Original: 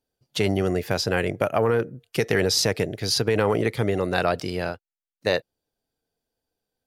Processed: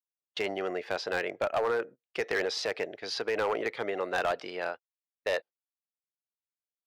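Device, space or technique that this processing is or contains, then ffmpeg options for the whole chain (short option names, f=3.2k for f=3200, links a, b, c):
walkie-talkie: -af "highpass=560,lowpass=2.9k,asoftclip=type=hard:threshold=-20.5dB,agate=range=-29dB:threshold=-41dB:ratio=16:detection=peak,volume=-2dB"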